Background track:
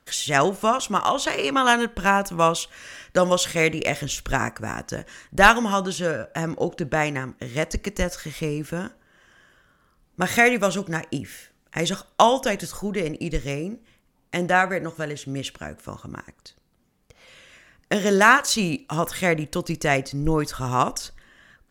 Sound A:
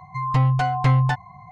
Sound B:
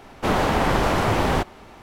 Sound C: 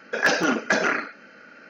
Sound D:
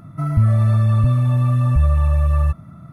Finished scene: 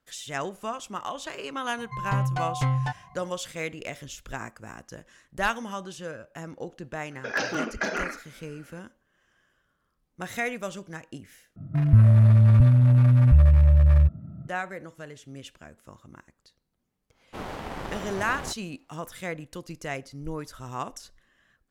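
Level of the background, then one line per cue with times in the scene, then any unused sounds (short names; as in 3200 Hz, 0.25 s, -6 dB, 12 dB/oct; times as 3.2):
background track -12.5 dB
1.77 add A -7.5 dB
7.11 add C -7.5 dB
11.56 replace with D -0.5 dB + Wiener smoothing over 41 samples
17.1 add B -12.5 dB + power-law curve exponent 1.4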